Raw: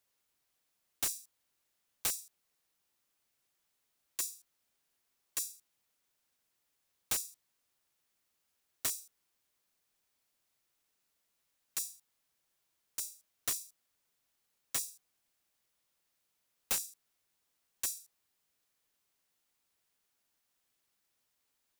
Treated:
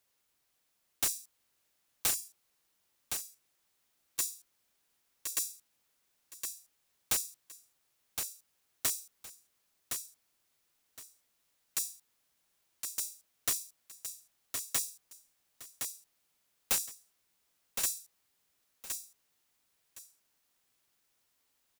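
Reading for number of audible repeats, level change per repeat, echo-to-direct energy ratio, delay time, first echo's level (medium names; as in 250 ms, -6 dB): 2, -13.0 dB, -6.0 dB, 1065 ms, -6.0 dB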